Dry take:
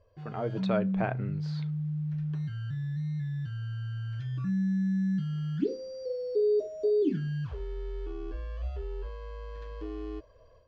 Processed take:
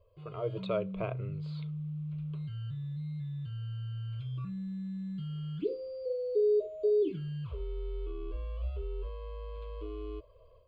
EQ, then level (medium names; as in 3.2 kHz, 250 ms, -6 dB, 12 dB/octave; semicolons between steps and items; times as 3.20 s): peaking EQ 1.5 kHz -10 dB 0.25 oct; static phaser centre 1.2 kHz, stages 8; 0.0 dB